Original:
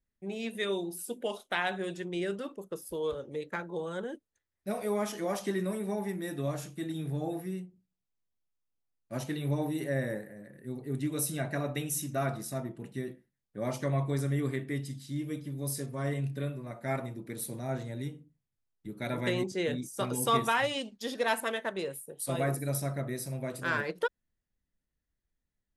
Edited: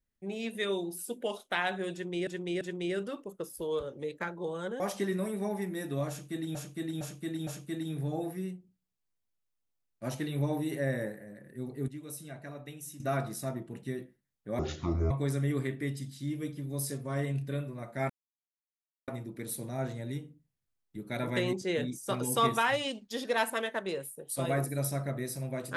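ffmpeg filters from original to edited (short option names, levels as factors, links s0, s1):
-filter_complex "[0:a]asplit=12[s0][s1][s2][s3][s4][s5][s6][s7][s8][s9][s10][s11];[s0]atrim=end=2.272[s12];[s1]atrim=start=1.928:end=2.272[s13];[s2]atrim=start=1.928:end=4.122[s14];[s3]atrim=start=5.268:end=7.022[s15];[s4]atrim=start=6.558:end=7.022[s16];[s5]atrim=start=6.558:end=7.022[s17];[s6]atrim=start=6.558:end=10.972[s18];[s7]atrim=start=10.968:end=12.092,asetpts=PTS-STARTPTS,volume=0.282[s19];[s8]atrim=start=12.088:end=13.684[s20];[s9]atrim=start=13.68:end=13.99,asetpts=PTS-STARTPTS,asetrate=26460,aresample=44100[s21];[s10]atrim=start=13.986:end=16.98,asetpts=PTS-STARTPTS,afade=t=out:st=2.99:d=0.004:c=hsin,apad=pad_dur=0.98[s22];[s11]atrim=start=16.98,asetpts=PTS-STARTPTS,afade=t=in:d=0.004:c=hsin[s23];[s12][s13]acrossfade=d=0.004:c1=hsin:c2=hsin[s24];[s24][s14]acrossfade=d=0.004:c1=hsin:c2=hsin[s25];[s25][s15]acrossfade=d=0.004:c1=hsin:c2=hsin[s26];[s26][s16]acrossfade=d=0.004:c1=hsin:c2=hsin[s27];[s27][s17]acrossfade=d=0.004:c1=hsin:c2=hsin[s28];[s28][s18]acrossfade=d=0.004:c1=hsin:c2=hsin[s29];[s29][s19]acrossfade=d=0.004:c1=hsin:c2=hsin[s30];[s30][s20]acrossfade=d=0.004:c1=hsin:c2=hsin[s31];[s31][s21]acrossfade=d=0.004:c1=hsin:c2=hsin[s32];[s22][s23]concat=n=2:v=0:a=1[s33];[s32][s33]acrossfade=d=0.004:c1=hsin:c2=hsin"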